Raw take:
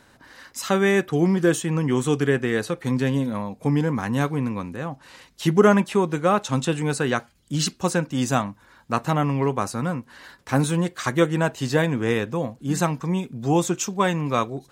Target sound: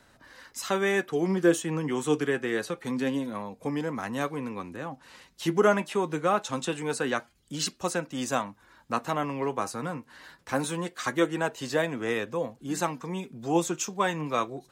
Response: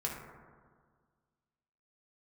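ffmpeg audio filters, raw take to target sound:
-filter_complex "[0:a]acrossover=split=220|840|3300[s0][s1][s2][s3];[s0]acompressor=threshold=0.01:ratio=6[s4];[s4][s1][s2][s3]amix=inputs=4:normalize=0,flanger=delay=1.5:depth=5.1:regen=69:speed=0.25:shape=sinusoidal"

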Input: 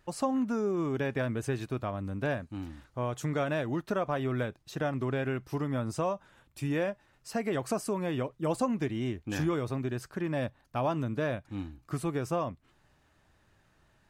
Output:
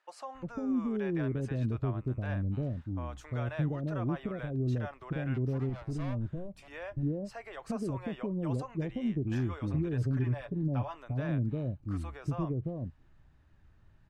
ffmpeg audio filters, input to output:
-filter_complex "[0:a]asettb=1/sr,asplit=3[s0][s1][s2];[s0]atrim=end=5.344[s3];[s1]atrim=start=5.34:end=6.68,asetpts=PTS-STARTPTS,afade=t=in:d=0.004:c=qsin,afade=t=out:st=1.336:d=0.004:c=qsin,volume=44.7,asoftclip=hard,volume=0.0224[s4];[s2]atrim=start=6.676[s5];[s3][s4]acrossfade=d=0.004:c1=hsin:c2=qsin[s6];[s6][s5]acrossfade=d=0.004:c1=qsin:c2=hsin,asettb=1/sr,asplit=3[s7][s8][s9];[s7]atrim=end=9.574[s10];[s8]atrim=start=9.57:end=10.96,asetpts=PTS-STARTPTS,afade=t=in:d=0.004:c=qsin,afade=t=out:st=1.386:d=0.004:c=qsin,aecho=1:1:7:0.65,atrim=end_sample=61299[s11];[s9]atrim=start=10.956[s12];[s10][s11]acrossfade=d=0.004:c1=hsin:c2=qsin[s13];[s13][s12]acrossfade=d=0.004:c1=qsin:c2=hsin,alimiter=limit=0.0668:level=0:latency=1:release=59,aemphasis=mode=reproduction:type=bsi,acrossover=split=570[s14][s15];[s14]adelay=350[s16];[s16][s15]amix=inputs=2:normalize=0,volume=0.596"

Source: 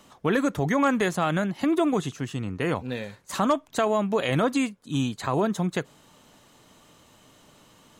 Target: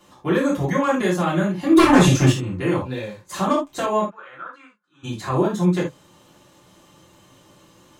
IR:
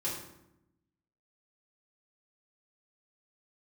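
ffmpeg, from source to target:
-filter_complex "[0:a]asettb=1/sr,asplit=3[s0][s1][s2];[s0]atrim=end=1.764[s3];[s1]atrim=start=1.76:end=2.32,asetpts=PTS-STARTPTS,afade=t=in:d=0.004:c=qsin,afade=t=out:st=0.556:d=0.004:c=qsin,aeval=exprs='0.237*sin(PI/2*3.55*val(0)/0.237)':c=same[s4];[s2]atrim=start=2.316[s5];[s3][s4]acrossfade=d=0.004:c1=hsin:c2=qsin[s6];[s6][s5]acrossfade=d=0.004:c1=qsin:c2=hsin,asplit=3[s7][s8][s9];[s7]afade=t=out:st=4.01:d=0.02[s10];[s8]bandpass=f=1400:t=q:w=7.9:csg=0,afade=t=in:st=4.01:d=0.02,afade=t=out:st=5.03:d=0.02[s11];[s9]afade=t=in:st=5.03:d=0.02[s12];[s10][s11][s12]amix=inputs=3:normalize=0[s13];[1:a]atrim=start_sample=2205,atrim=end_sample=3969[s14];[s13][s14]afir=irnorm=-1:irlink=0,volume=0.891"

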